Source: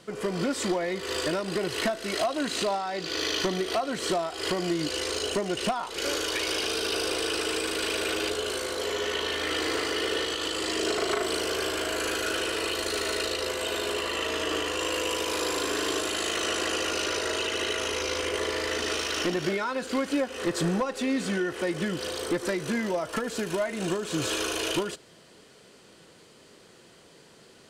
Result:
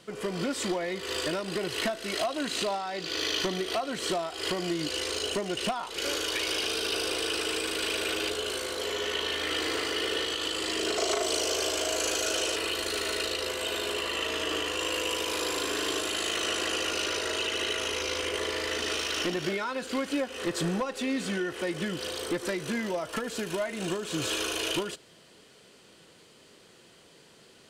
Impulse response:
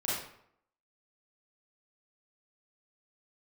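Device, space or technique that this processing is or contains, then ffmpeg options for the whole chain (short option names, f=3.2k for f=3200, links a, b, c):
presence and air boost: -filter_complex "[0:a]equalizer=f=3k:t=o:w=0.93:g=3.5,highshelf=f=10k:g=4,asettb=1/sr,asplit=3[a][b][c];[a]atrim=end=10.974[d];[b]atrim=start=10.97:end=12.56,asetpts=PTS-STARTPTS,afade=t=in:d=0.004:c=qsin,afade=t=out:st=1.586:d=0.004:c=qsin,equalizer=f=160:t=o:w=0.67:g=-9,equalizer=f=630:t=o:w=0.67:g=6,equalizer=f=1.6k:t=o:w=0.67:g=-4,equalizer=f=6.3k:t=o:w=0.67:g=10[e];[c]atrim=start=12.556[f];[d][e]acrossfade=d=0.004:c1=hsin:c2=qsin[g];[g][f]acrossfade=d=0.004:c1=qsin:c2=hsin,volume=-3dB"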